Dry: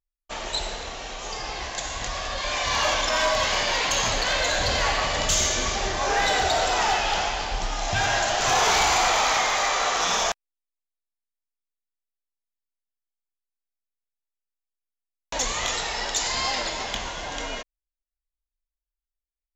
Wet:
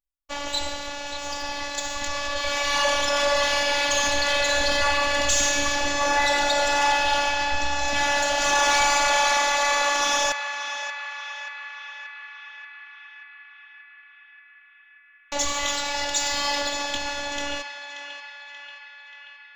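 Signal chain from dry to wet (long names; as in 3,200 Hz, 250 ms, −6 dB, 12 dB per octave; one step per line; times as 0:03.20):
phases set to zero 287 Hz
leveller curve on the samples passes 1
feedback echo with a band-pass in the loop 582 ms, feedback 74%, band-pass 1,900 Hz, level −7 dB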